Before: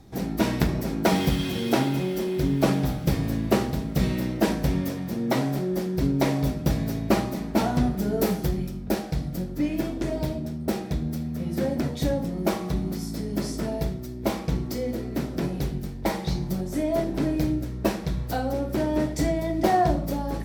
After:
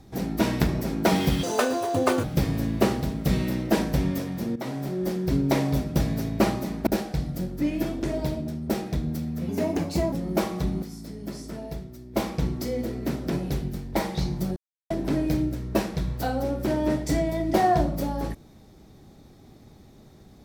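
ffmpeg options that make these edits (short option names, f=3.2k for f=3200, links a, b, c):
-filter_complex "[0:a]asplit=11[a][b][c][d][e][f][g][h][i][j][k];[a]atrim=end=1.434[l];[b]atrim=start=1.43:end=2.94,asetpts=PTS-STARTPTS,asetrate=82467,aresample=44100,atrim=end_sample=35610,asetpts=PTS-STARTPTS[m];[c]atrim=start=2.936:end=5.26,asetpts=PTS-STARTPTS,afade=t=out:st=2.32:d=0.004:c=hsin:silence=0.223872[n];[d]atrim=start=5.26:end=7.572,asetpts=PTS-STARTPTS,afade=t=in:d=0.54:silence=0.223872[o];[e]atrim=start=8.848:end=11.474[p];[f]atrim=start=11.47:end=12.22,asetpts=PTS-STARTPTS,asetrate=52038,aresample=44100[q];[g]atrim=start=12.216:end=12.922[r];[h]atrim=start=12.918:end=14.262,asetpts=PTS-STARTPTS,volume=-7.5dB[s];[i]atrim=start=14.258:end=16.66,asetpts=PTS-STARTPTS,afade=t=out:st=2.398:d=0.004:c=hsin[t];[j]atrim=start=16.66:end=17,asetpts=PTS-STARTPTS,volume=0[u];[k]atrim=start=17,asetpts=PTS-STARTPTS,afade=t=in:d=0.004:c=hsin[v];[l][m]acrossfade=d=0.004:c1=hsin:c2=hsin[w];[n][o]concat=n=2:v=0:a=1[x];[w][x]acrossfade=d=0.004:c1=hsin:c2=hsin[y];[y][p]acrossfade=d=0.004:c1=hsin:c2=hsin[z];[z][q]acrossfade=d=0.004:c1=hsin:c2=hsin[aa];[aa][r]acrossfade=d=0.004:c1=hsin:c2=hsin[ab];[ab][s]acrossfade=d=0.004:c1=hsin:c2=hsin[ac];[t][u][v]concat=n=3:v=0:a=1[ad];[ac][ad]acrossfade=d=0.004:c1=hsin:c2=hsin"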